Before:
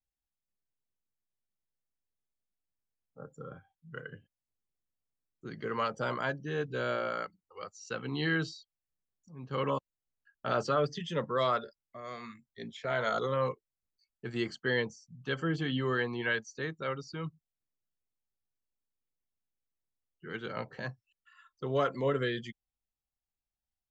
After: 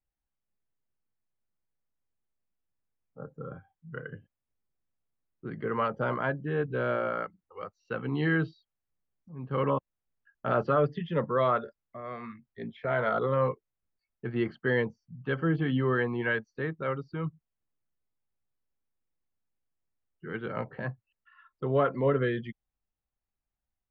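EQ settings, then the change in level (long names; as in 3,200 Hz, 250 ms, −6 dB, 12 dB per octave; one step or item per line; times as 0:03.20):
high-frequency loss of the air 360 metres
bass and treble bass +1 dB, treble −13 dB
+5.0 dB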